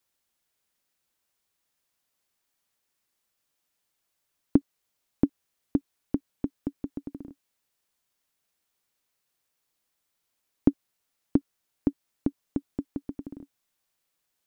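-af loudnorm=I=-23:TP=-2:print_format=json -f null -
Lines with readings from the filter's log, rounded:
"input_i" : "-32.8",
"input_tp" : "-5.4",
"input_lra" : "7.1",
"input_thresh" : "-43.5",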